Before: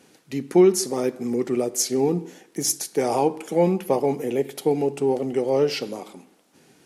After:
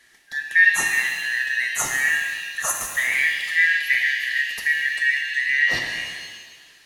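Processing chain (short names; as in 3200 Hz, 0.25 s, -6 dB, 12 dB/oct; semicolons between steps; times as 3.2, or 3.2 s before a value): four-band scrambler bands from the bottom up 4123; shimmer reverb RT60 1.6 s, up +7 st, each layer -8 dB, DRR 2 dB; gain -1.5 dB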